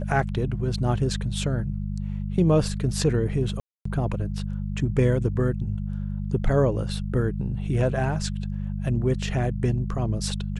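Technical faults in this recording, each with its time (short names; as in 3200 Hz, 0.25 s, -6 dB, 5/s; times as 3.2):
hum 50 Hz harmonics 4 -29 dBFS
3.6–3.85 gap 0.254 s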